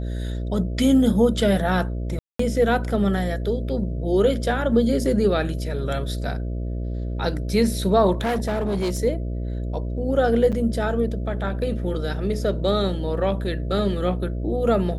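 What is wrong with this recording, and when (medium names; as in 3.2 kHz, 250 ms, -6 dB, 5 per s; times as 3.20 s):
buzz 60 Hz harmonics 11 -27 dBFS
2.19–2.39 s: dropout 204 ms
8.13–9.00 s: clipped -20 dBFS
10.52–10.53 s: dropout 6.8 ms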